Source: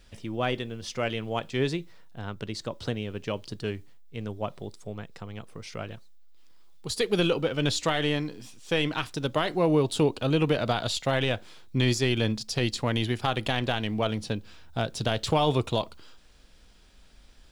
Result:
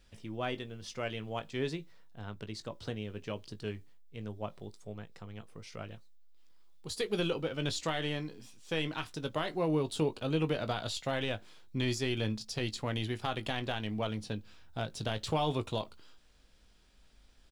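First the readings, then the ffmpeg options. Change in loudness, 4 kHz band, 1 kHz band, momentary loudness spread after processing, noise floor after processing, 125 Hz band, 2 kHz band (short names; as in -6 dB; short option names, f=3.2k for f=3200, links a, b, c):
-7.5 dB, -7.5 dB, -7.5 dB, 15 LU, -62 dBFS, -7.5 dB, -7.5 dB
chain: -filter_complex "[0:a]asplit=2[a][b];[b]adelay=19,volume=-11dB[c];[a][c]amix=inputs=2:normalize=0,volume=-8dB"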